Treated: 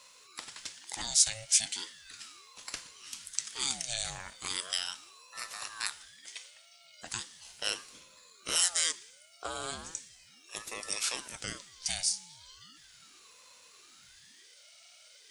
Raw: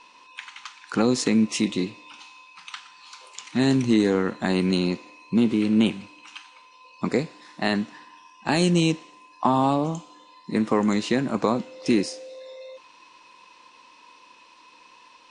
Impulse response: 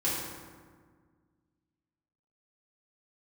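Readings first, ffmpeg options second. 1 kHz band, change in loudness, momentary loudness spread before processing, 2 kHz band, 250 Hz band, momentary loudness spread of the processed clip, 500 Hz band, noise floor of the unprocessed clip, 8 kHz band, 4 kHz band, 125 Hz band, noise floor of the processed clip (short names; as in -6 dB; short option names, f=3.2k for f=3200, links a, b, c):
-16.5 dB, -9.0 dB, 20 LU, -8.0 dB, -33.5 dB, 20 LU, -23.0 dB, -53 dBFS, +8.0 dB, -0.5 dB, -25.5 dB, -59 dBFS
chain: -af "aderivative,crystalizer=i=2:c=0,aeval=exprs='val(0)*sin(2*PI*940*n/s+940*0.65/0.37*sin(2*PI*0.37*n/s))':c=same,volume=3dB"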